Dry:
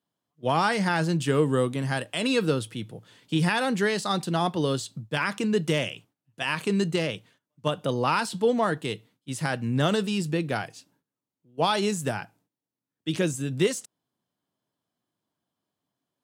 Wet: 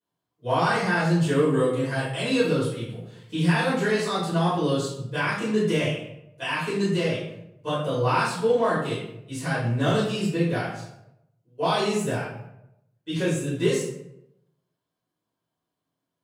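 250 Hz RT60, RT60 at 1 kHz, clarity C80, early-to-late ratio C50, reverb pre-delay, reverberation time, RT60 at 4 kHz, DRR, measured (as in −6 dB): 0.95 s, 0.75 s, 6.0 dB, 1.5 dB, 4 ms, 0.85 s, 0.50 s, −12.5 dB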